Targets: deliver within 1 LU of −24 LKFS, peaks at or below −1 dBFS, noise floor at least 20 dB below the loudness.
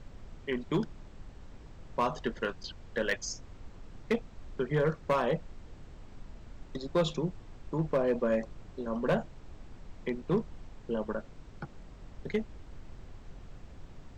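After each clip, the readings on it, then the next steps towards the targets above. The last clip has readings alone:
share of clipped samples 0.4%; peaks flattened at −21.0 dBFS; background noise floor −51 dBFS; target noise floor −54 dBFS; integrated loudness −33.5 LKFS; sample peak −21.0 dBFS; target loudness −24.0 LKFS
→ clipped peaks rebuilt −21 dBFS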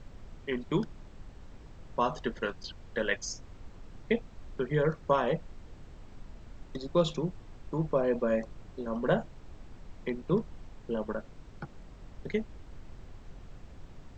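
share of clipped samples 0.0%; background noise floor −51 dBFS; target noise floor −53 dBFS
→ noise reduction from a noise print 6 dB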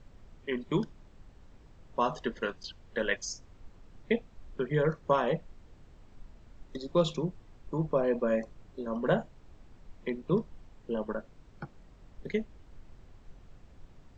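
background noise floor −57 dBFS; integrated loudness −32.5 LKFS; sample peak −13.0 dBFS; target loudness −24.0 LKFS
→ level +8.5 dB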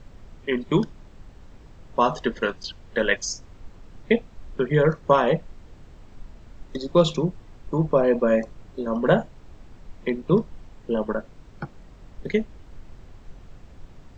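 integrated loudness −24.0 LKFS; sample peak −4.5 dBFS; background noise floor −48 dBFS

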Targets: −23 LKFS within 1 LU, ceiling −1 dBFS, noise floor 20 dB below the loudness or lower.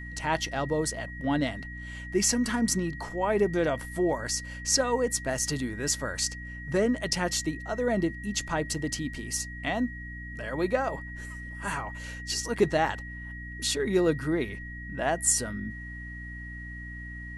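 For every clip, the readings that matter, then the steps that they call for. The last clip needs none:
mains hum 60 Hz; hum harmonics up to 300 Hz; level of the hum −39 dBFS; interfering tone 1,900 Hz; level of the tone −41 dBFS; integrated loudness −29.0 LKFS; sample peak −10.5 dBFS; target loudness −23.0 LKFS
→ mains-hum notches 60/120/180/240/300 Hz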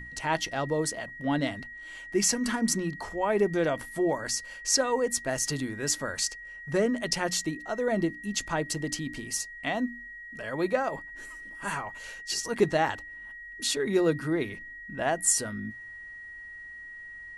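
mains hum none found; interfering tone 1,900 Hz; level of the tone −41 dBFS
→ notch filter 1,900 Hz, Q 30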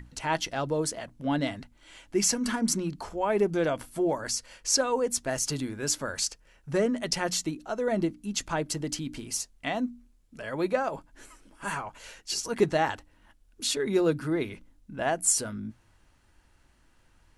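interfering tone none found; integrated loudness −29.0 LKFS; sample peak −11.0 dBFS; target loudness −23.0 LKFS
→ level +6 dB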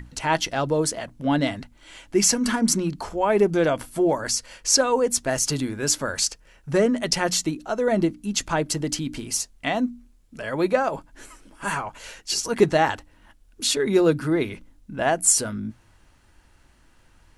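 integrated loudness −23.0 LKFS; sample peak −5.0 dBFS; background noise floor −57 dBFS

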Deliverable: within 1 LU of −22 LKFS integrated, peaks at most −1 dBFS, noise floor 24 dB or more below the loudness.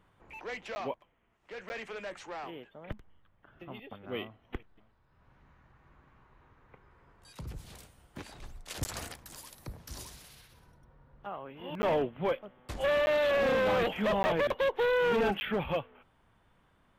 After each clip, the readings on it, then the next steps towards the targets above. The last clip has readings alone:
number of dropouts 7; longest dropout 10 ms; integrated loudness −31.5 LKFS; sample peak −20.0 dBFS; target loudness −22.0 LKFS
→ repair the gap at 0:00.75/0:01.69/0:08.84/0:11.82/0:13.06/0:14.23/0:15.40, 10 ms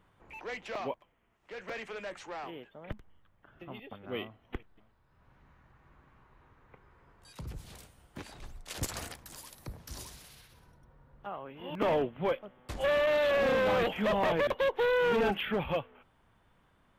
number of dropouts 0; integrated loudness −31.5 LKFS; sample peak −15.0 dBFS; target loudness −22.0 LKFS
→ level +9.5 dB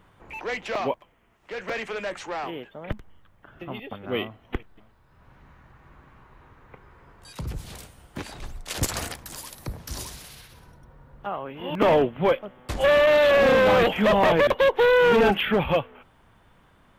integrated loudness −22.0 LKFS; sample peak −5.5 dBFS; background noise floor −59 dBFS

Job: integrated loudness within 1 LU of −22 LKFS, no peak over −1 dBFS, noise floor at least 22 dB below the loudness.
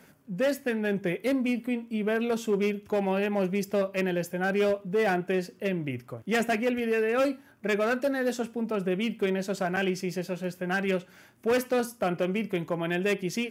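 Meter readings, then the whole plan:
crackle rate 24 per second; integrated loudness −28.5 LKFS; sample peak −17.5 dBFS; target loudness −22.0 LKFS
→ click removal
level +6.5 dB

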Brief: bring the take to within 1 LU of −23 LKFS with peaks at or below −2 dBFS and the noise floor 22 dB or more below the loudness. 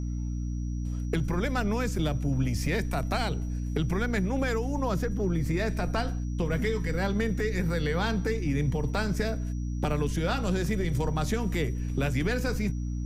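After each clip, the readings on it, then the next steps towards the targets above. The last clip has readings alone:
mains hum 60 Hz; hum harmonics up to 300 Hz; level of the hum −29 dBFS; interfering tone 5,800 Hz; level of the tone −56 dBFS; integrated loudness −29.5 LKFS; sample peak −14.5 dBFS; target loudness −23.0 LKFS
→ hum removal 60 Hz, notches 5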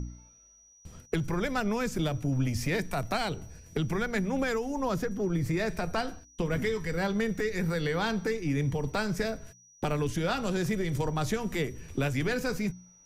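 mains hum none found; interfering tone 5,800 Hz; level of the tone −56 dBFS
→ notch filter 5,800 Hz, Q 30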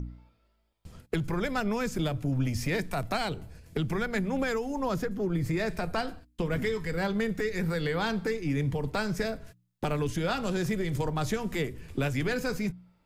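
interfering tone none found; integrated loudness −31.0 LKFS; sample peak −16.5 dBFS; target loudness −23.0 LKFS
→ level +8 dB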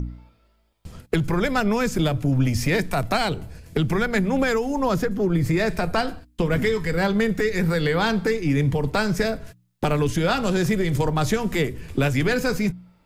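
integrated loudness −23.0 LKFS; sample peak −8.5 dBFS; background noise floor −62 dBFS

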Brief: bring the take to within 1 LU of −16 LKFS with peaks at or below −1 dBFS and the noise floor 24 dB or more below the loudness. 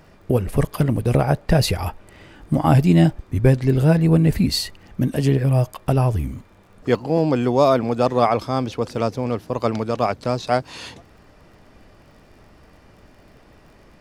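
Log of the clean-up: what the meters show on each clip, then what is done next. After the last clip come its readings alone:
crackle rate 38 per second; integrated loudness −20.0 LKFS; sample peak −3.0 dBFS; target loudness −16.0 LKFS
→ click removal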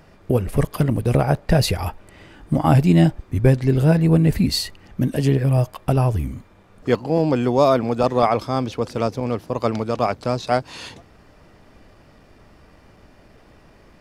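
crackle rate 0.36 per second; integrated loudness −20.0 LKFS; sample peak −3.0 dBFS; target loudness −16.0 LKFS
→ level +4 dB
brickwall limiter −1 dBFS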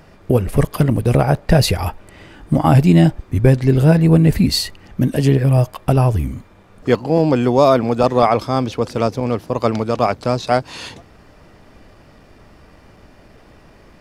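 integrated loudness −16.0 LKFS; sample peak −1.0 dBFS; background noise floor −47 dBFS

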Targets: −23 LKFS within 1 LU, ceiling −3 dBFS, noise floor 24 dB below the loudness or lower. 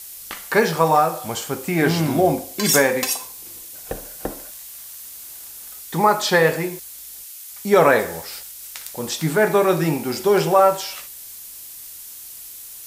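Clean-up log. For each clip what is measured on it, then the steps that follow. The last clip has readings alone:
background noise floor −38 dBFS; target noise floor −43 dBFS; integrated loudness −19.0 LKFS; sample peak −2.0 dBFS; target loudness −23.0 LKFS
→ broadband denoise 6 dB, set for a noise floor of −38 dBFS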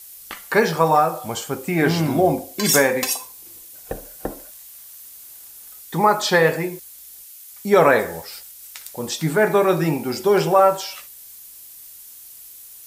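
background noise floor −42 dBFS; target noise floor −43 dBFS
→ broadband denoise 6 dB, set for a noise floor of −42 dBFS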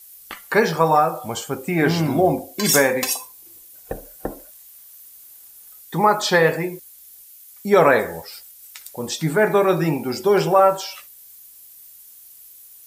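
background noise floor −46 dBFS; integrated loudness −19.0 LKFS; sample peak −2.0 dBFS; target loudness −23.0 LKFS
→ level −4 dB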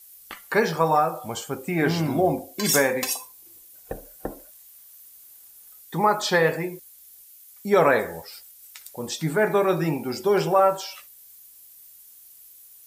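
integrated loudness −23.0 LKFS; sample peak −6.0 dBFS; background noise floor −50 dBFS

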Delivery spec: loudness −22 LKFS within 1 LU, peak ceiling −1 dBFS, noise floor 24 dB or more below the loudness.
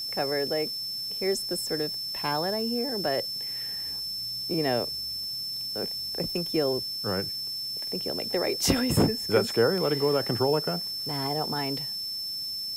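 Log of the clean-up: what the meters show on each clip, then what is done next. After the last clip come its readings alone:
interfering tone 5,300 Hz; level of the tone −31 dBFS; background noise floor −34 dBFS; target noise floor −52 dBFS; integrated loudness −27.5 LKFS; sample peak −9.5 dBFS; target loudness −22.0 LKFS
→ notch filter 5,300 Hz, Q 30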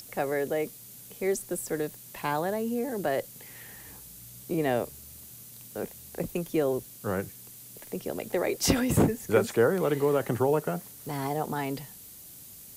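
interfering tone none found; background noise floor −48 dBFS; target noise floor −54 dBFS
→ noise reduction from a noise print 6 dB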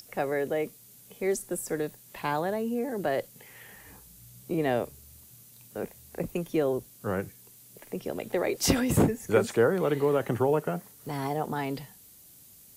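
background noise floor −54 dBFS; integrated loudness −29.5 LKFS; sample peak −10.0 dBFS; target loudness −22.0 LKFS
→ level +7.5 dB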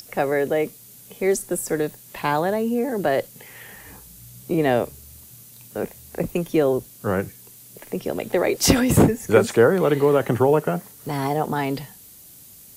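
integrated loudness −22.0 LKFS; sample peak −2.5 dBFS; background noise floor −46 dBFS

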